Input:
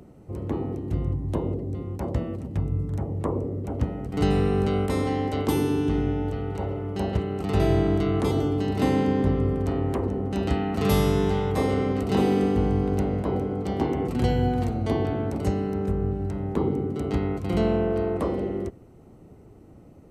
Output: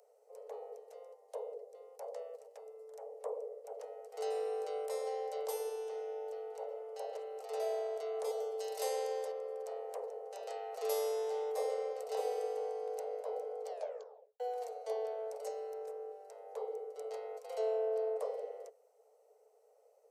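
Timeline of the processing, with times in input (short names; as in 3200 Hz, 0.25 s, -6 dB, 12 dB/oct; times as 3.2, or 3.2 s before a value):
8.59–9.32 high shelf 3300 Hz +12 dB
13.68 tape stop 0.72 s
whole clip: Chebyshev high-pass 430 Hz, order 10; band shelf 1900 Hz -11.5 dB 2.3 oct; gain -6.5 dB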